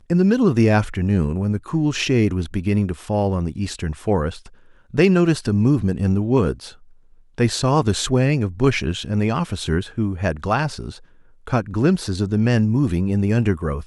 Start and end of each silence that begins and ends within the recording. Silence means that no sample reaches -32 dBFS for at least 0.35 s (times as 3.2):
4.46–4.94
6.7–7.38
10.97–11.47